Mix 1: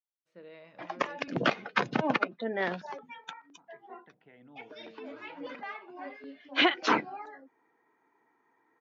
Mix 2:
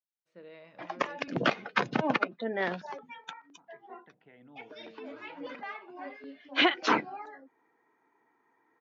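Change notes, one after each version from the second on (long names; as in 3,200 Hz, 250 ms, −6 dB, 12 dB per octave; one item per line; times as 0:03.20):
nothing changed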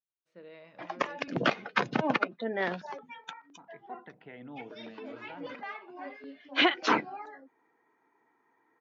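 second voice +9.5 dB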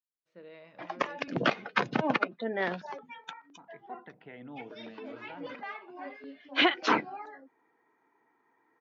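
master: add low-pass filter 7,100 Hz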